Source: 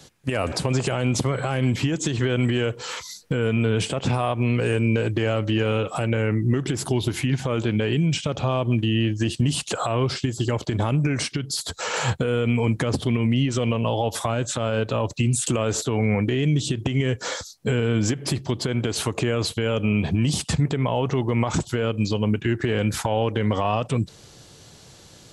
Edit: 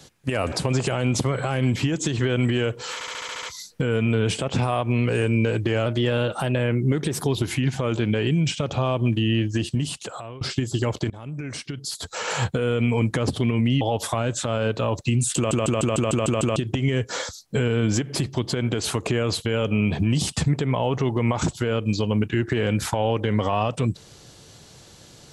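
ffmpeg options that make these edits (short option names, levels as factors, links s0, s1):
-filter_complex "[0:a]asplit=21[s0][s1][s2][s3][s4][s5][s6][s7][s8][s9][s10][s11][s12][s13][s14][s15][s16][s17][s18][s19][s20];[s0]atrim=end=3.012[s21];[s1]atrim=start=2.938:end=3.012[s22];[s2]atrim=start=2.938:end=3.012[s23];[s3]atrim=start=2.938:end=3.012[s24];[s4]atrim=start=2.938:end=3.012[s25];[s5]atrim=start=2.938:end=3.012[s26];[s6]atrim=start=2.938:end=3.012[s27];[s7]atrim=start=2.938:end=5.374[s28];[s8]atrim=start=5.37:end=7.02,asetpts=PTS-STARTPTS,asetrate=48510,aresample=44100[s29];[s9]atrim=start=7.016:end=10.07,asetpts=PTS-STARTPTS,afade=t=out:st=2.124:d=0.93:silence=0.0841395[s30];[s10]atrim=start=10.07:end=10.76,asetpts=PTS-STARTPTS,afade=t=in:d=0.004:c=hsin:silence=0.0841395,afade=t=out:st=0.686:d=0.004:c=hsin:silence=0.0841395[s31];[s11]atrim=start=10.76:end=13.472,asetpts=PTS-STARTPTS,afade=t=in:d=1.87:c=qsin:silence=0.0841395[s32];[s12]atrim=start=13.928:end=15.632[s33];[s13]atrim=start=15.478:end=15.632[s34];[s14]atrim=start=15.478:end=15.632[s35];[s15]atrim=start=15.478:end=15.632[s36];[s16]atrim=start=15.478:end=15.632[s37];[s17]atrim=start=15.478:end=15.632[s38];[s18]atrim=start=15.478:end=15.632[s39];[s19]atrim=start=15.478:end=15.632[s40];[s20]atrim=start=16.678[s41];[s21][s22]acrossfade=d=0.004:c1=hsin:c2=hsin[s42];[s42][s23]acrossfade=d=0.004:c1=hsin:c2=hsin[s43];[s43][s24]acrossfade=d=0.004:c1=hsin:c2=hsin[s44];[s44][s25]acrossfade=d=0.004:c1=hsin:c2=hsin[s45];[s45][s26]acrossfade=d=0.004:c1=hsin:c2=hsin[s46];[s46][s27]acrossfade=d=0.004:c1=hsin:c2=hsin[s47];[s47][s28]acrossfade=d=0.004:c1=hsin:c2=hsin[s48];[s48][s29]acrossfade=d=0.004:c1=hsin:c2=hsin[s49];[s30][s31][s32]concat=n=3:v=0:a=1[s50];[s49][s50]acrossfade=d=0.004:c1=hsin:c2=hsin[s51];[s51][s33]acrossfade=d=0.004:c1=hsin:c2=hsin[s52];[s52][s34]acrossfade=d=0.004:c1=hsin:c2=hsin[s53];[s53][s35]acrossfade=d=0.004:c1=hsin:c2=hsin[s54];[s54][s36]acrossfade=d=0.004:c1=hsin:c2=hsin[s55];[s55][s37]acrossfade=d=0.004:c1=hsin:c2=hsin[s56];[s56][s38]acrossfade=d=0.004:c1=hsin:c2=hsin[s57];[s57][s39]acrossfade=d=0.004:c1=hsin:c2=hsin[s58];[s58][s40]acrossfade=d=0.004:c1=hsin:c2=hsin[s59];[s59][s41]acrossfade=d=0.004:c1=hsin:c2=hsin"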